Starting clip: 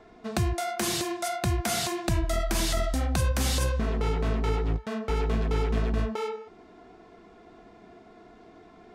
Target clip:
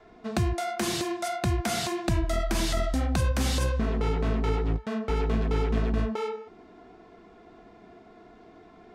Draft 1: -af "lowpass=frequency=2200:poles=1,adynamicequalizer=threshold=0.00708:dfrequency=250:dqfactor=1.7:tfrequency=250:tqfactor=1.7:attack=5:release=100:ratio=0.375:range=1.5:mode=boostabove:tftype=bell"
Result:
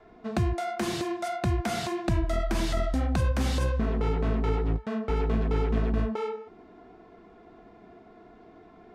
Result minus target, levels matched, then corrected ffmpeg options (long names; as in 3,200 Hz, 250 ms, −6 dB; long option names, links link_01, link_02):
8,000 Hz band −6.5 dB
-af "lowpass=frequency=6200:poles=1,adynamicequalizer=threshold=0.00708:dfrequency=250:dqfactor=1.7:tfrequency=250:tqfactor=1.7:attack=5:release=100:ratio=0.375:range=1.5:mode=boostabove:tftype=bell"